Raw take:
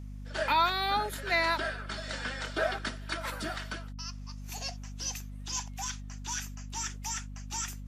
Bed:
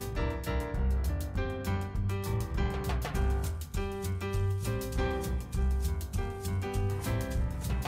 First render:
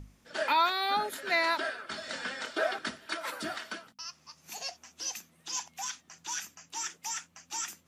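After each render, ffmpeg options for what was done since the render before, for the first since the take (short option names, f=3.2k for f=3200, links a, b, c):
-af "bandreject=f=50:t=h:w=6,bandreject=f=100:t=h:w=6,bandreject=f=150:t=h:w=6,bandreject=f=200:t=h:w=6,bandreject=f=250:t=h:w=6"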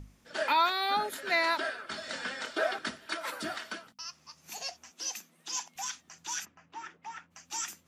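-filter_complex "[0:a]asettb=1/sr,asplit=3[a][b][c];[a]atrim=end=4.914[d];[b]atrim=start=4.91:end=5.76,asetpts=PTS-STARTPTS,afade=t=in:d=0.004:c=qsin,afade=t=out:st=0.846:d=0.004:c=qsin,highpass=f=170:w=0.5412,highpass=f=170:w=1.3066[e];[c]atrim=start=5.756[f];[d][e]acrossfade=d=0.004:c1=hsin:c2=qsin[g];[g][f]acrossfade=d=0.004:c1=qsin:c2=hsin,asplit=3[h][i][j];[h]afade=t=out:st=6.44:d=0.02[k];[i]lowpass=1.8k,afade=t=in:st=6.44:d=0.02,afade=t=out:st=7.3:d=0.02[l];[j]afade=t=in:st=7.3:d=0.02[m];[k][l][m]amix=inputs=3:normalize=0"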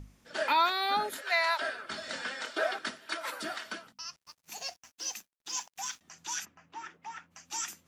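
-filter_complex "[0:a]asettb=1/sr,asplit=3[a][b][c];[a]atrim=end=1.214[d];[b]atrim=start=1.21:end=1.62,asetpts=PTS-STARTPTS,afade=t=in:d=0.004:c=qsin,afade=t=out:st=0.406:d=0.004:c=qsin,highpass=f=570:w=0.5412,highpass=f=570:w=1.3066[e];[c]atrim=start=1.616[f];[d][e]acrossfade=d=0.004:c1=hsin:c2=qsin[g];[g][f]acrossfade=d=0.004:c1=qsin:c2=hsin,asettb=1/sr,asplit=3[h][i][j];[h]atrim=end=2.224[k];[i]atrim=start=2.22:end=3.66,asetpts=PTS-STARTPTS,afade=t=in:d=0.004:c=qsin,afade=t=out:st=1.436:d=0.004:c=qsin,highpass=f=280:p=1[l];[j]atrim=start=3.656[m];[k][l]acrossfade=d=0.004:c1=hsin:c2=qsin[n];[n][m]acrossfade=d=0.004:c1=qsin:c2=hsin,asettb=1/sr,asplit=3[o][p][q];[o]atrim=end=4.164[r];[p]atrim=start=4.16:end=6.01,asetpts=PTS-STARTPTS,afade=t=in:d=0.004:c=qsin,afade=t=out:st=1.846:d=0.004:c=qsin,aeval=exprs='sgn(val(0))*max(abs(val(0))-0.00141,0)':c=same[s];[q]atrim=start=6.006[t];[r][s]acrossfade=d=0.004:c1=hsin:c2=qsin[u];[u][t]acrossfade=d=0.004:c1=qsin:c2=hsin"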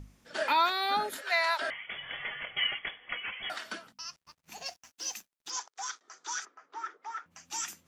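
-filter_complex "[0:a]asettb=1/sr,asplit=3[a][b][c];[a]atrim=end=1.704[d];[b]atrim=start=1.7:end=3.5,asetpts=PTS-STARTPTS,afade=t=in:d=0.004:c=qsin,afade=t=out:st=1.796:d=0.004:c=qsin,lowpass=f=3.1k:t=q:w=0.5098,lowpass=f=3.1k:t=q:w=0.6013,lowpass=f=3.1k:t=q:w=0.9,lowpass=f=3.1k:t=q:w=2.563,afreqshift=-3600[e];[c]atrim=start=3.496[f];[d][e]acrossfade=d=0.004:c1=hsin:c2=qsin[g];[g][f]acrossfade=d=0.004:c1=qsin:c2=hsin,asettb=1/sr,asplit=3[h][i][j];[h]atrim=end=4.214[k];[i]atrim=start=4.21:end=4.66,asetpts=PTS-STARTPTS,afade=t=in:d=0.004:c=qsin,afade=t=out:st=0.446:d=0.004:c=qsin,bass=f=250:g=5,treble=f=4k:g=-7[l];[j]atrim=start=4.656[m];[k][l]acrossfade=d=0.004:c1=hsin:c2=qsin[n];[n][m]acrossfade=d=0.004:c1=qsin:c2=hsin,asettb=1/sr,asplit=3[o][p][q];[o]atrim=end=5.504[r];[p]atrim=start=5.5:end=7.26,asetpts=PTS-STARTPTS,afade=t=in:d=0.004:c=qsin,afade=t=out:st=1.756:d=0.004:c=qsin,highpass=f=340:w=0.5412,highpass=f=340:w=1.3066,equalizer=f=420:t=q:w=4:g=8,equalizer=f=1.3k:t=q:w=4:g=10,equalizer=f=2.7k:t=q:w=4:g=-10,lowpass=f=7k:w=0.5412,lowpass=f=7k:w=1.3066[s];[q]atrim=start=7.256[t];[r][s]acrossfade=d=0.004:c1=hsin:c2=qsin[u];[u][t]acrossfade=d=0.004:c1=qsin:c2=hsin"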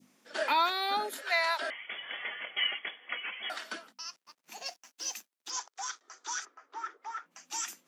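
-af "adynamicequalizer=threshold=0.01:dfrequency=1400:dqfactor=0.75:tfrequency=1400:tqfactor=0.75:attack=5:release=100:ratio=0.375:range=2:mode=cutabove:tftype=bell,highpass=f=230:w=0.5412,highpass=f=230:w=1.3066"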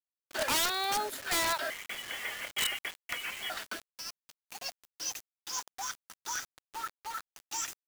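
-af "acrusher=bits=6:mix=0:aa=0.000001,aeval=exprs='(mod(15*val(0)+1,2)-1)/15':c=same"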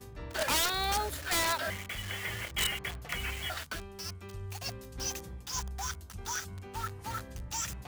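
-filter_complex "[1:a]volume=-11.5dB[a];[0:a][a]amix=inputs=2:normalize=0"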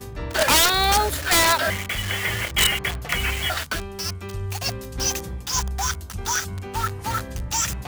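-af "volume=12dB"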